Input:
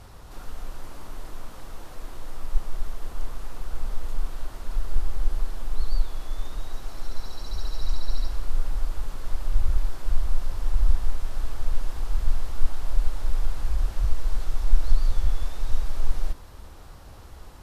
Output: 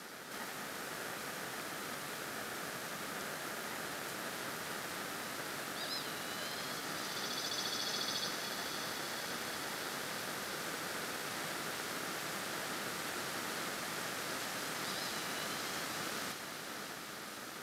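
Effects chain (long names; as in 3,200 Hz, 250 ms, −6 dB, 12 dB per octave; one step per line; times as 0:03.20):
Butterworth high-pass 650 Hz 96 dB per octave
feedback delay with all-pass diffusion 645 ms, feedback 68%, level −8 dB
ring modulation 510 Hz
level +8.5 dB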